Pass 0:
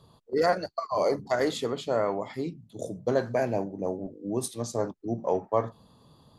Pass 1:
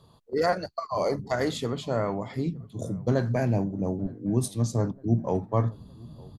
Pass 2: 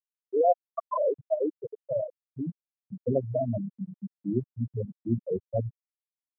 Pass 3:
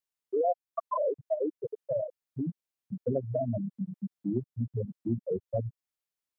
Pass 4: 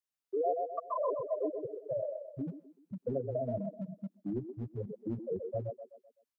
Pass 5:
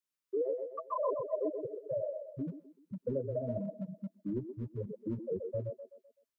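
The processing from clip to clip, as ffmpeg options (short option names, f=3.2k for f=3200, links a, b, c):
-filter_complex "[0:a]asubboost=boost=6:cutoff=210,asplit=2[a][b];[b]adelay=912,lowpass=f=1.2k:p=1,volume=-23.5dB,asplit=2[c][d];[d]adelay=912,lowpass=f=1.2k:p=1,volume=0.54,asplit=2[e][f];[f]adelay=912,lowpass=f=1.2k:p=1,volume=0.54,asplit=2[g][h];[h]adelay=912,lowpass=f=1.2k:p=1,volume=0.54[i];[a][c][e][g][i]amix=inputs=5:normalize=0"
-af "afftfilt=real='re*gte(hypot(re,im),0.316)':imag='im*gte(hypot(re,im),0.316)':win_size=1024:overlap=0.75,aemphasis=mode=production:type=riaa,volume=5.5dB"
-af "acompressor=threshold=-35dB:ratio=2,volume=3.5dB"
-filter_complex "[0:a]acrossover=split=230|270[a][b][c];[a]asoftclip=type=hard:threshold=-34.5dB[d];[c]aecho=1:1:127|254|381|508|635:0.668|0.281|0.118|0.0495|0.0208[e];[d][b][e]amix=inputs=3:normalize=0,volume=-4.5dB"
-af "asuperstop=centerf=750:order=20:qfactor=3.8"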